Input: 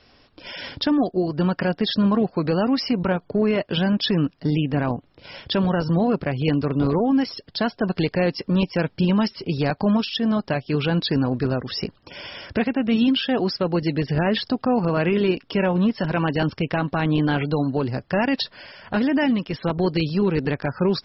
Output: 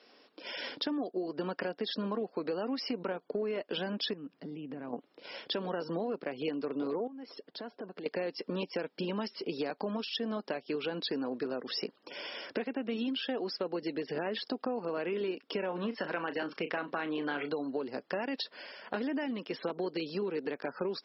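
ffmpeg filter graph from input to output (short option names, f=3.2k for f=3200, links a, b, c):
-filter_complex "[0:a]asettb=1/sr,asplit=3[a][b][c];[a]atrim=end=4.134[d];[b]atrim=start=4.13:end=4.93,asetpts=PTS-STARTPTS,afade=t=in:d=0.004:c=qsin,afade=t=out:st=0.796:d=0.004:c=qsin,bass=f=250:g=12,treble=f=4k:g=-9,acompressor=threshold=-26dB:ratio=20:attack=3.2:release=140:knee=1:detection=peak[e];[c]atrim=start=4.926[f];[d][e]acrossfade=d=0.004:c1=hsin:c2=qsin[g];[g][f]acrossfade=d=0.004:c1=qsin:c2=hsin,asettb=1/sr,asplit=3[h][i][j];[h]atrim=end=7.074[k];[i]atrim=start=7.07:end=8.06,asetpts=PTS-STARTPTS,afade=t=in:d=0.004:c=qsin,afade=t=out:st=0.986:d=0.004:c=qsin,lowpass=f=1.5k:p=1,acompressor=threshold=-32dB:ratio=16:attack=3.2:release=140:knee=1:detection=peak[l];[j]atrim=start=8.056[m];[k][l]acrossfade=d=0.004:c1=hsin:c2=qsin[n];[n][m]acrossfade=d=0.004:c1=qsin:c2=hsin,asettb=1/sr,asplit=3[o][p][q];[o]atrim=end=15.684[r];[p]atrim=start=15.68:end=17.53,asetpts=PTS-STARTPTS,afade=t=in:d=0.004:c=qsin,afade=t=out:st=1.846:d=0.004:c=qsin,equalizer=f=1.6k:t=o:w=1.5:g=6.5,asplit=2[s][t];[t]adelay=35,volume=-11.5dB[u];[s][u]amix=inputs=2:normalize=0,atrim=end_sample=81585[v];[q]atrim=start=17.526[w];[r][v]acrossfade=d=0.004:c1=hsin:c2=qsin[x];[x][w]acrossfade=d=0.004:c1=qsin:c2=hsin,highpass=f=240:w=0.5412,highpass=f=240:w=1.3066,equalizer=f=460:w=3.3:g=5,acompressor=threshold=-26dB:ratio=6,volume=-5.5dB"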